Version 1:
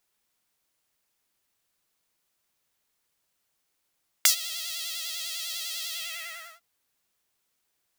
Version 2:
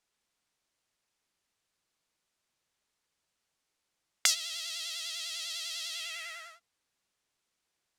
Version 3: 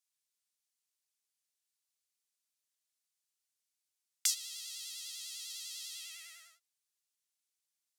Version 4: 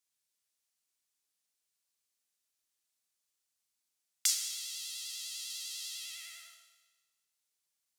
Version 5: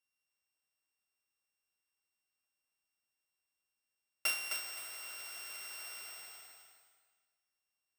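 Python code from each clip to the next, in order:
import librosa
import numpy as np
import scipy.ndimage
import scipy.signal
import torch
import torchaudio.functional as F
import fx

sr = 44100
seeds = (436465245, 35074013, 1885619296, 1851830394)

y1 = scipy.signal.sosfilt(scipy.signal.butter(2, 8300.0, 'lowpass', fs=sr, output='sos'), x)
y1 = y1 * librosa.db_to_amplitude(-2.5)
y2 = np.diff(y1, prepend=0.0)
y2 = y2 * librosa.db_to_amplitude(-3.0)
y3 = fx.rev_schroeder(y2, sr, rt60_s=1.3, comb_ms=27, drr_db=4.5)
y3 = y3 * librosa.db_to_amplitude(1.5)
y4 = np.r_[np.sort(y3[:len(y3) // 16 * 16].reshape(-1, 16), axis=1).ravel(), y3[len(y3) // 16 * 16:]]
y4 = fx.echo_feedback(y4, sr, ms=260, feedback_pct=30, wet_db=-5)
y4 = y4 * librosa.db_to_amplitude(-4.0)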